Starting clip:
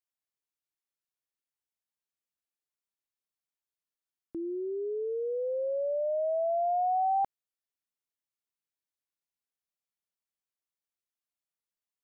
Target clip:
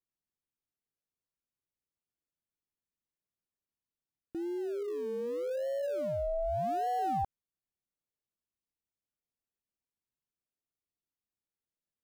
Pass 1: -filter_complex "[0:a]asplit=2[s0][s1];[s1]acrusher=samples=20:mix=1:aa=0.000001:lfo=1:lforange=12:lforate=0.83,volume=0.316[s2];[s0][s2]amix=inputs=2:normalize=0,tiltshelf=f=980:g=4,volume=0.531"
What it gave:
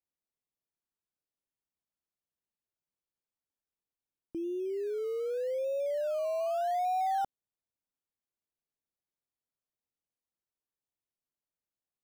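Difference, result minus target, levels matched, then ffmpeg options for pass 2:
decimation with a swept rate: distortion -19 dB
-filter_complex "[0:a]asplit=2[s0][s1];[s1]acrusher=samples=51:mix=1:aa=0.000001:lfo=1:lforange=30.6:lforate=0.83,volume=0.316[s2];[s0][s2]amix=inputs=2:normalize=0,tiltshelf=f=980:g=4,volume=0.531"

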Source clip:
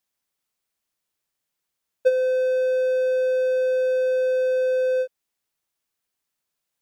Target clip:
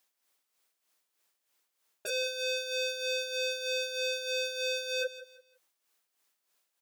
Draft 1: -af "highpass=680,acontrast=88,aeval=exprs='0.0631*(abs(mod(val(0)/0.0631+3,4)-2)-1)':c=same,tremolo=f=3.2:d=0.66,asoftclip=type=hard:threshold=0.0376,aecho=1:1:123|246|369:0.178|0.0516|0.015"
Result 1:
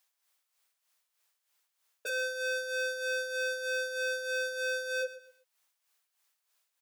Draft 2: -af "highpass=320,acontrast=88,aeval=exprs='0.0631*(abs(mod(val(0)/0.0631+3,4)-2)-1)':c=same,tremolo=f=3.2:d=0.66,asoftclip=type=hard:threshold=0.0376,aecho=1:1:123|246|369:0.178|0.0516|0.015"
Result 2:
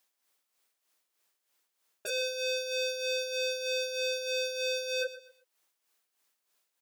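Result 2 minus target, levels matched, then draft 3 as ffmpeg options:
echo 46 ms early
-af "highpass=320,acontrast=88,aeval=exprs='0.0631*(abs(mod(val(0)/0.0631+3,4)-2)-1)':c=same,tremolo=f=3.2:d=0.66,asoftclip=type=hard:threshold=0.0376,aecho=1:1:169|338|507:0.178|0.0516|0.015"

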